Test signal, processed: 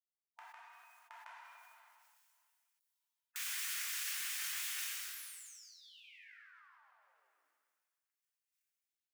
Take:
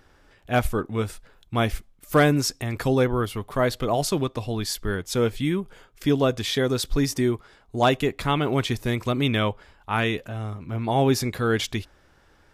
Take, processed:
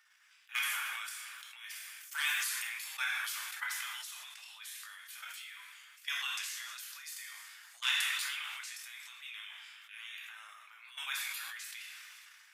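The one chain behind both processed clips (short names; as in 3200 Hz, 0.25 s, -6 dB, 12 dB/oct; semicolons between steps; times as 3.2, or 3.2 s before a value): bell 3800 Hz -4 dB 0.84 oct; on a send: tape echo 0.148 s, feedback 56%, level -23 dB, low-pass 2300 Hz; on the sum: level quantiser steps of 19 dB; spectral gate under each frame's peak -15 dB weak; HPF 1500 Hz 24 dB/oct; two-slope reverb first 0.48 s, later 2.3 s, from -18 dB, DRR -0.5 dB; sustainer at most 21 dB/s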